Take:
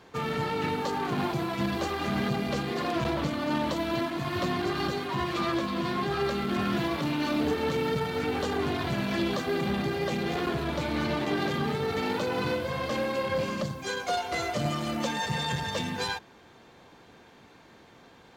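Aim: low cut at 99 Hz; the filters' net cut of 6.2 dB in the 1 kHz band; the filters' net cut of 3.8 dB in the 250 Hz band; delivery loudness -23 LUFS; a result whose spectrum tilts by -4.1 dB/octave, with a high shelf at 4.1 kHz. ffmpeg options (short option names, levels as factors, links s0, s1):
-af "highpass=99,equalizer=f=250:t=o:g=-4.5,equalizer=f=1000:t=o:g=-8.5,highshelf=f=4100:g=6.5,volume=2.66"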